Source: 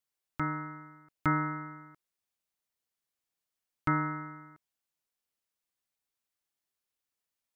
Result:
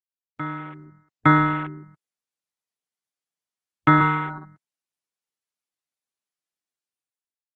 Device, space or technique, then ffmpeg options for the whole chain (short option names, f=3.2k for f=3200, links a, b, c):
video call: -filter_complex "[0:a]afwtdn=0.00891,asettb=1/sr,asplit=3[a][b][c];[a]atrim=end=3.974[d];[b]atrim=start=3.97:end=4.38,asetpts=PTS-STARTPTS,afade=t=in:d=0.004:c=qsin,afade=t=out:st=0.406:d=0.004:c=qsin,asplit=2[e][f];[f]adelay=35,volume=-3dB[g];[e][g]amix=inputs=2:normalize=0,atrim=end_sample=18081[h];[c]atrim=start=4.376[i];[d][h]acrossfade=d=0.004:c1=hsin:c2=qsin[j];[j][i]acrossfade=d=0.004:c1=qsin:c2=hsin,highpass=f=120:w=0.5412,highpass=f=120:w=1.3066,dynaudnorm=f=330:g=5:m=13.5dB" -ar 48000 -c:a libopus -b:a 20k